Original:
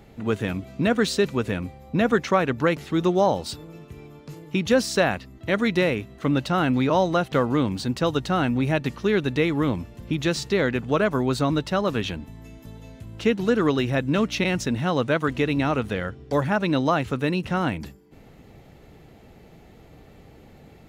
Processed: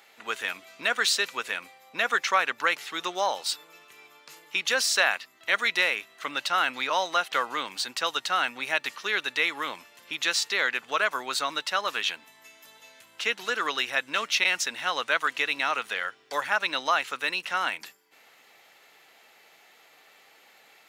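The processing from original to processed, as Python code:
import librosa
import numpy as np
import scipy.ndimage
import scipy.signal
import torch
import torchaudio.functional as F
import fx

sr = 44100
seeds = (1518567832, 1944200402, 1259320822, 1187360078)

y = scipy.signal.sosfilt(scipy.signal.butter(2, 1300.0, 'highpass', fs=sr, output='sos'), x)
y = y * 10.0 ** (5.0 / 20.0)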